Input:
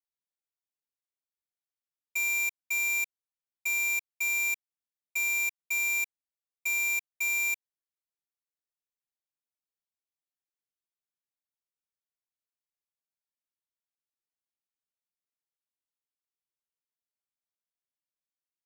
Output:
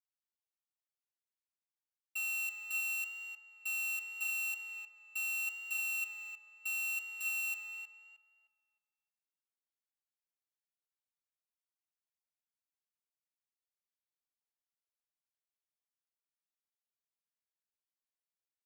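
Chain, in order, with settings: HPF 290 Hz 12 dB/oct; frequency shift +350 Hz; tape echo 0.31 s, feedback 35%, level -3 dB, low-pass 2100 Hz; on a send at -15 dB: reverb RT60 0.75 s, pre-delay 3 ms; on the sum: gain -8 dB

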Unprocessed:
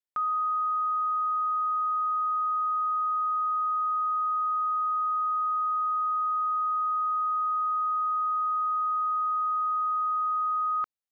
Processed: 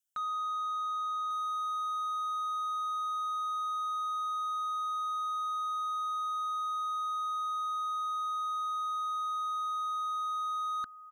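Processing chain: EQ curve 250 Hz 0 dB, 360 Hz -7 dB, 510 Hz -13 dB, 720 Hz -5 dB, 1000 Hz -18 dB, 1500 Hz +5 dB, 2100 Hz -14 dB, 3000 Hz +7 dB, 4300 Hz -6 dB, 6100 Hz +10 dB; echo 1.144 s -17.5 dB; slew limiter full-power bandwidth 28 Hz

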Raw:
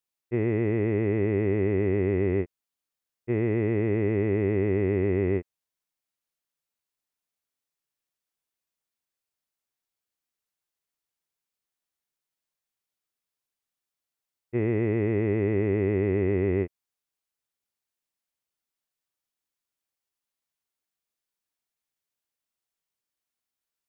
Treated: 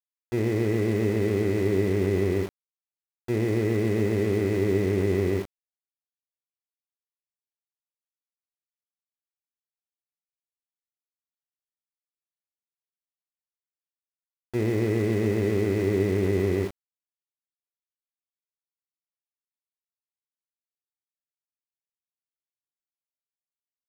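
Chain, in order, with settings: Schroeder reverb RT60 0.39 s, combs from 28 ms, DRR 7.5 dB; sample gate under -34 dBFS

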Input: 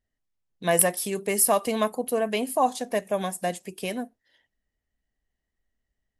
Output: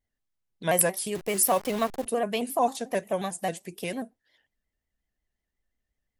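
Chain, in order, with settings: 1.15–2.06 level-crossing sampler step -34 dBFS; overloaded stage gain 7.5 dB; shaped vibrato square 5.6 Hz, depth 100 cents; gain -2 dB

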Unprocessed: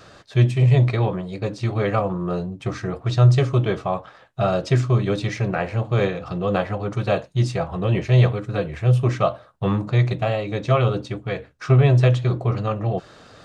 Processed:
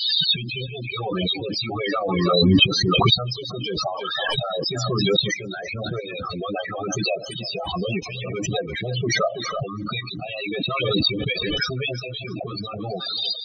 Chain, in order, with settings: recorder AGC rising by 64 dB/s; 7.56–9.24 expander -18 dBFS; bell 3900 Hz +11 dB 1.5 oct; harmonic-percussive split harmonic -17 dB; high shelf 2700 Hz +10 dB; whine 3000 Hz -54 dBFS; tremolo saw up 1.5 Hz, depth 75%; loudest bins only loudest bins 8; on a send: thinning echo 0.329 s, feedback 32%, high-pass 230 Hz, level -18.5 dB; on the sum: backwards sustainer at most 21 dB/s

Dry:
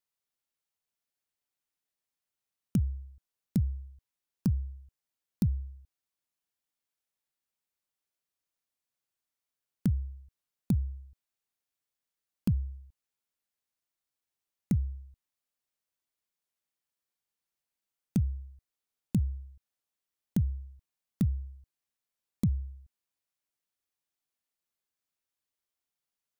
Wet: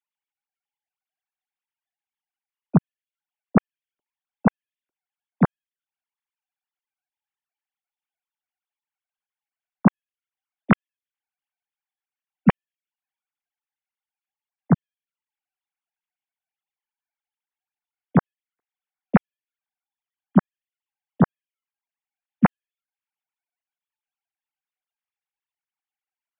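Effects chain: sine-wave speech; gain +8 dB

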